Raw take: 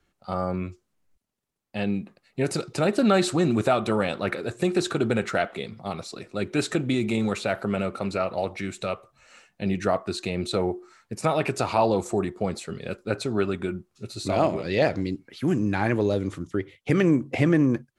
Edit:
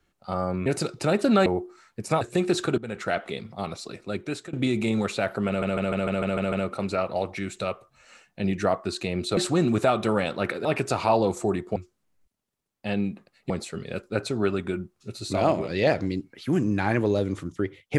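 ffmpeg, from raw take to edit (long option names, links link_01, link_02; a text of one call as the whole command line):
ffmpeg -i in.wav -filter_complex "[0:a]asplit=17[link_01][link_02][link_03][link_04][link_05][link_06][link_07][link_08][link_09][link_10][link_11][link_12][link_13][link_14][link_15][link_16][link_17];[link_01]atrim=end=0.662[link_18];[link_02]atrim=start=2.398:end=3.202[link_19];[link_03]atrim=start=10.588:end=11.342[link_20];[link_04]atrim=start=4.478:end=5.05,asetpts=PTS-STARTPTS,afade=type=out:start_time=0.568:duration=0.004:curve=hsin:silence=0.105925[link_21];[link_05]atrim=start=5.05:end=6.8,asetpts=PTS-STARTPTS,afade=type=in:duration=0.44:silence=0.105925,afade=type=out:start_time=1.21:duration=0.54:silence=0.112202[link_22];[link_06]atrim=start=6.8:end=7.892,asetpts=PTS-STARTPTS,afade=type=in:duration=0.004:curve=hsin:silence=0.112202[link_23];[link_07]atrim=start=7.738:end=7.892[link_24];[link_08]atrim=start=7.738:end=7.892[link_25];[link_09]atrim=start=7.738:end=7.892[link_26];[link_10]atrim=start=7.738:end=7.892[link_27];[link_11]atrim=start=7.738:end=7.892[link_28];[link_12]atrim=start=7.738:end=7.892[link_29];[link_13]atrim=start=7.738:end=10.592[link_30];[link_14]atrim=start=3.198:end=4.482[link_31];[link_15]atrim=start=11.338:end=12.452[link_32];[link_16]atrim=start=0.658:end=2.402[link_33];[link_17]atrim=start=12.448[link_34];[link_18][link_19]acrossfade=duration=0.004:curve1=hsin:curve2=hsin[link_35];[link_35][link_20]acrossfade=duration=0.004:curve1=hsin:curve2=hsin[link_36];[link_21][link_22][link_23]concat=n=3:v=0:a=1[link_37];[link_36][link_37]acrossfade=duration=0.004:curve1=hsin:curve2=hsin[link_38];[link_38][link_24]acrossfade=duration=0.004:curve1=hsin:curve2=hsin[link_39];[link_39][link_25]acrossfade=duration=0.004:curve1=hsin:curve2=hsin[link_40];[link_40][link_26]acrossfade=duration=0.004:curve1=hsin:curve2=hsin[link_41];[link_41][link_27]acrossfade=duration=0.004:curve1=hsin:curve2=hsin[link_42];[link_42][link_28]acrossfade=duration=0.004:curve1=hsin:curve2=hsin[link_43];[link_43][link_29]acrossfade=duration=0.004:curve1=hsin:curve2=hsin[link_44];[link_44][link_30]acrossfade=duration=0.004:curve1=hsin:curve2=hsin[link_45];[link_45][link_31]acrossfade=duration=0.004:curve1=hsin:curve2=hsin[link_46];[link_46][link_32]acrossfade=duration=0.004:curve1=hsin:curve2=hsin[link_47];[link_47][link_33]acrossfade=duration=0.004:curve1=hsin:curve2=hsin[link_48];[link_48][link_34]acrossfade=duration=0.004:curve1=hsin:curve2=hsin" out.wav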